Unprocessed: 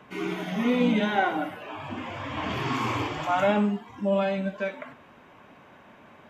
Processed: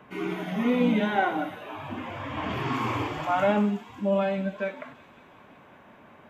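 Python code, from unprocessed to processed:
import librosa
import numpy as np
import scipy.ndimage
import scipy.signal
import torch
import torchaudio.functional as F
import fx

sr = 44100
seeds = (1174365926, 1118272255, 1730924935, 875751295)

y = fx.peak_eq(x, sr, hz=5700.0, db=-6.5, octaves=1.7)
y = fx.echo_wet_highpass(y, sr, ms=183, feedback_pct=74, hz=4500.0, wet_db=-7.5)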